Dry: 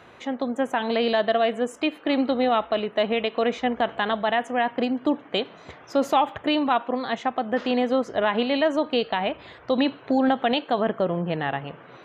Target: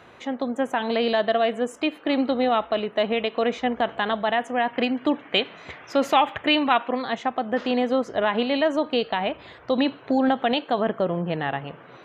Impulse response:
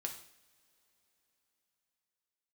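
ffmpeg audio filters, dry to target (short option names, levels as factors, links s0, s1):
-filter_complex "[0:a]asettb=1/sr,asplit=3[s0][s1][s2];[s0]atrim=end=4.734[s3];[s1]atrim=start=4.73:end=7.02,asetpts=PTS-STARTPTS,afade=t=in:d=0.004:c=qsin,afade=t=out:st=2.286:d=0.004:c=qsin,equalizer=f=2300:t=o:w=1.3:g=8.5[s4];[s2]atrim=start=7.016[s5];[s3][s4]acrossfade=d=0.004:c1=hsin:c2=qsin[s6];[s6][s5]acrossfade=d=0.004:c1=qsin:c2=hsin"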